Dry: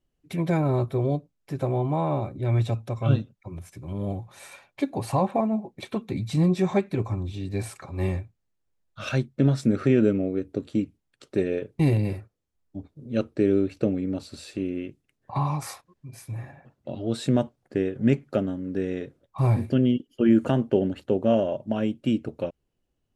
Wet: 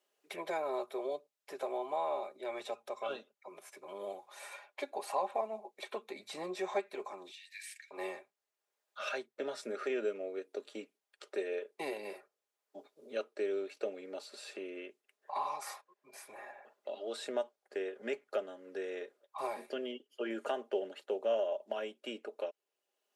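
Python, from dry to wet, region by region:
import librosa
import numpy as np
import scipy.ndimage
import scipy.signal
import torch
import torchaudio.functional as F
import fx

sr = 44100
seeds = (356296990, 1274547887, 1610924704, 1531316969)

y = fx.chain(x, sr, fx.steep_highpass(hz=1700.0, slope=96),
    fx.quant_float(bits=8), at=(7.31, 7.91))
y = scipy.signal.sosfilt(scipy.signal.butter(4, 460.0, 'highpass', fs=sr, output='sos'), y)
y = y + 0.41 * np.pad(y, (int(4.9 * sr / 1000.0), 0))[:len(y)]
y = fx.band_squash(y, sr, depth_pct=40)
y = F.gain(torch.from_numpy(y), -6.5).numpy()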